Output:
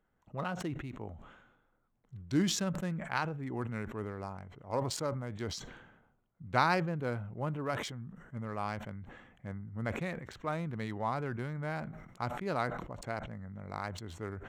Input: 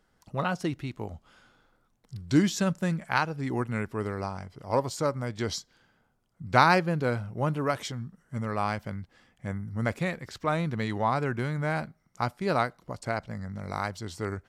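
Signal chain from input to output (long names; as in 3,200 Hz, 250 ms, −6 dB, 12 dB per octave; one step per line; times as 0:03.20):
adaptive Wiener filter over 9 samples
level that may fall only so fast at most 54 dB per second
level −8 dB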